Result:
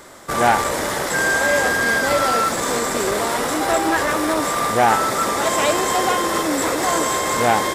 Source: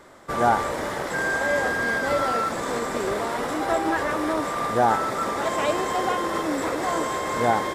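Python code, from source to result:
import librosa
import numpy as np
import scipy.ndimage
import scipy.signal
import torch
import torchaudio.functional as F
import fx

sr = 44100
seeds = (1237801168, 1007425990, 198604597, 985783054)

y = fx.high_shelf(x, sr, hz=4100.0, db=11.5)
y = fx.transformer_sat(y, sr, knee_hz=1300.0)
y = y * 10.0 ** (5.5 / 20.0)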